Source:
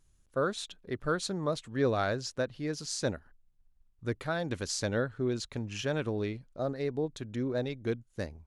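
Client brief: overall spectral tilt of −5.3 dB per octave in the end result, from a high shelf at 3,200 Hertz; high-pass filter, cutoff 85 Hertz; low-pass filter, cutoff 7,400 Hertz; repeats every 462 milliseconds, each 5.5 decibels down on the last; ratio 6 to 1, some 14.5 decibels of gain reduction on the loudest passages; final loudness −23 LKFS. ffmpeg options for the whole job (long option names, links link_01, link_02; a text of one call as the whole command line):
ffmpeg -i in.wav -af "highpass=85,lowpass=7400,highshelf=frequency=3200:gain=-8,acompressor=threshold=-39dB:ratio=6,aecho=1:1:462|924|1386|1848|2310|2772|3234:0.531|0.281|0.149|0.079|0.0419|0.0222|0.0118,volume=20dB" out.wav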